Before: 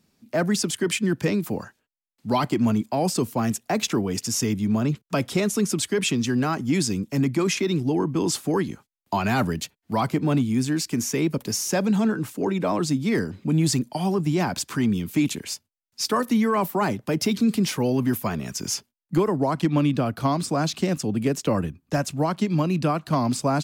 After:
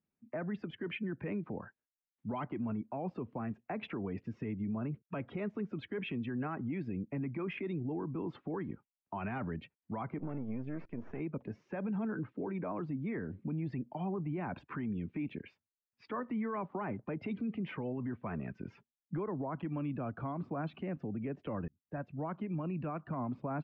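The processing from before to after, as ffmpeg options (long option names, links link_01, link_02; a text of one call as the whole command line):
ffmpeg -i in.wav -filter_complex "[0:a]asettb=1/sr,asplit=3[link_01][link_02][link_03];[link_01]atrim=end=10.194[link_04];[link_02]atrim=start=10.19:end=11.2,asetpts=PTS-STARTPTS,afade=type=in:duration=0.004:curve=qsin,afade=type=out:start_time=1.006:duration=0.004:curve=qsin,aeval=exprs='if(lt(val(0),0),0.251*val(0),val(0))':channel_layout=same[link_05];[link_03]atrim=start=11.196[link_06];[link_04][link_05]acrossfade=duration=0.004:curve1=hsin:curve2=qsin[link_07];[link_07][link_06]acrossfade=duration=0.004:curve1=qsin:curve2=hsin,asplit=2[link_08][link_09];[link_08]atrim=end=21.68,asetpts=PTS-STARTPTS,afade=type=out:start_time=21.676:duration=0.004:curve=hsin[link_10];[link_09]atrim=start=21.68,asetpts=PTS-STARTPTS,afade=type=in:duration=0.74[link_11];[link_10][link_11]concat=n=2:v=0:a=1,lowpass=frequency=2500:width=0.5412,lowpass=frequency=2500:width=1.3066,afftdn=noise_reduction=15:noise_floor=-43,alimiter=limit=-22.5dB:level=0:latency=1:release=107,volume=-7.5dB" out.wav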